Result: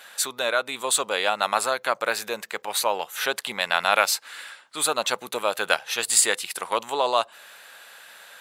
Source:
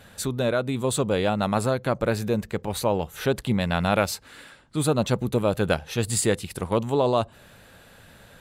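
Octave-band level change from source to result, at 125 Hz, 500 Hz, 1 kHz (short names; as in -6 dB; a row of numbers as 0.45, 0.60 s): -26.5, -3.5, +4.0 dB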